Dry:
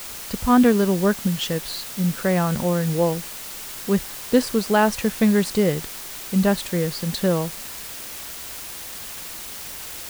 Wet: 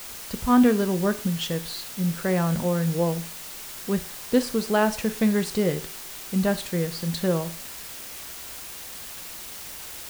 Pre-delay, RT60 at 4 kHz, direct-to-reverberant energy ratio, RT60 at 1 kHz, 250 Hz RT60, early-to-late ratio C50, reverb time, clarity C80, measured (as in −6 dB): 5 ms, 0.45 s, 10.0 dB, 0.45 s, 0.50 s, 16.5 dB, 0.45 s, 20.5 dB